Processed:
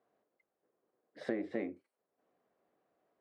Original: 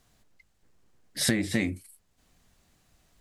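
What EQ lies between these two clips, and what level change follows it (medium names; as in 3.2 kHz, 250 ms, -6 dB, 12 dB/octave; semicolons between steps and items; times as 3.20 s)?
ladder band-pass 570 Hz, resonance 30%; band-stop 890 Hz, Q 17; +7.0 dB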